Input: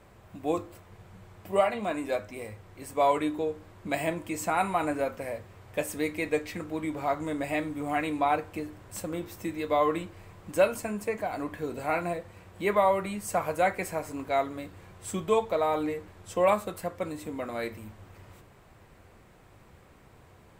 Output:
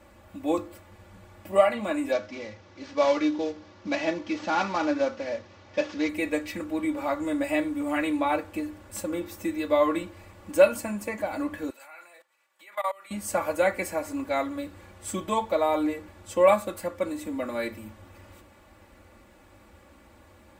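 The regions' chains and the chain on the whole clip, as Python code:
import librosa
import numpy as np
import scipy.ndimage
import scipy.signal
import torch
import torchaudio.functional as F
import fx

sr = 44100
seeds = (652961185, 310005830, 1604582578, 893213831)

y = fx.chain(x, sr, fx.cvsd(bps=32000),
    fx.highpass(hz=100.0, slope=12), at=(2.12, 6.09))
y = fx.chain(y, sr, fx.high_shelf(hz=9600.0, db=3.5),
    fx.level_steps(step_db=22),
    fx.highpass(hz=1100.0, slope=12), at=(11.7, 13.11))
y = scipy.signal.sosfilt(scipy.signal.butter(2, 41.0, 'highpass', fs=sr, output='sos'), y)
y = y + 0.92 * np.pad(y, (int(3.5 * sr / 1000.0), 0))[:len(y)]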